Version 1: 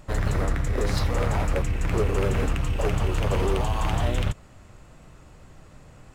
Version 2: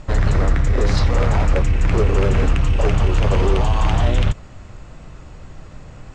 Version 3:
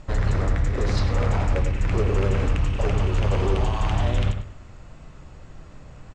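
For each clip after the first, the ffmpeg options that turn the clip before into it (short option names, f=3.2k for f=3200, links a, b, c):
-filter_complex "[0:a]lowpass=f=7.2k:w=0.5412,lowpass=f=7.2k:w=1.3066,lowshelf=f=88:g=5.5,asplit=2[a][b];[b]alimiter=limit=-21.5dB:level=0:latency=1:release=27,volume=-0.5dB[c];[a][c]amix=inputs=2:normalize=0,volume=2dB"
-filter_complex "[0:a]asplit=2[a][b];[b]adelay=101,lowpass=f=3k:p=1,volume=-7dB,asplit=2[c][d];[d]adelay=101,lowpass=f=3k:p=1,volume=0.31,asplit=2[e][f];[f]adelay=101,lowpass=f=3k:p=1,volume=0.31,asplit=2[g][h];[h]adelay=101,lowpass=f=3k:p=1,volume=0.31[i];[a][c][e][g][i]amix=inputs=5:normalize=0,volume=-6dB"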